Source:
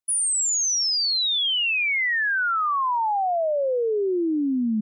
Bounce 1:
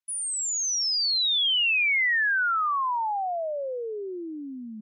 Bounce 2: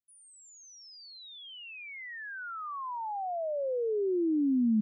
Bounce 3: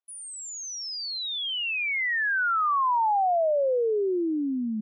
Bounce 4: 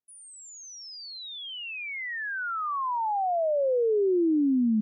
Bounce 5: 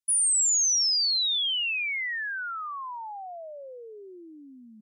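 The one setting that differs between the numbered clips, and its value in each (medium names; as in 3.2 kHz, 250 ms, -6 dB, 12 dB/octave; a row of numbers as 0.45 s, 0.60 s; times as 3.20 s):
band-pass filter, frequency: 2.4 kHz, 110 Hz, 780 Hz, 300 Hz, 7.8 kHz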